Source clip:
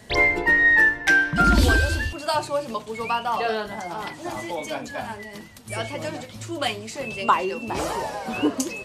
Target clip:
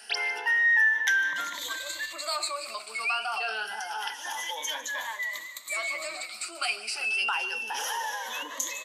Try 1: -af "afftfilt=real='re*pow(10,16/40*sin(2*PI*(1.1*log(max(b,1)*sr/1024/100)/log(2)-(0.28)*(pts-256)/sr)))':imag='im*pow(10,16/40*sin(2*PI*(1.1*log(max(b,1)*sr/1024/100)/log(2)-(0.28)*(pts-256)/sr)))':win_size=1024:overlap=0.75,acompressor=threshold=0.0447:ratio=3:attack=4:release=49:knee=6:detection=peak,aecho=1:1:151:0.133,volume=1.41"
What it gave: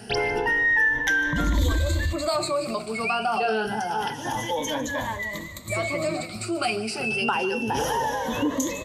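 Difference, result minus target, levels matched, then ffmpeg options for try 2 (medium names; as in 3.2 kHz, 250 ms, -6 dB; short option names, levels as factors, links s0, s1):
1 kHz band +4.0 dB
-af "afftfilt=real='re*pow(10,16/40*sin(2*PI*(1.1*log(max(b,1)*sr/1024/100)/log(2)-(0.28)*(pts-256)/sr)))':imag='im*pow(10,16/40*sin(2*PI*(1.1*log(max(b,1)*sr/1024/100)/log(2)-(0.28)*(pts-256)/sr)))':win_size=1024:overlap=0.75,acompressor=threshold=0.0447:ratio=3:attack=4:release=49:knee=6:detection=peak,highpass=1300,aecho=1:1:151:0.133,volume=1.41"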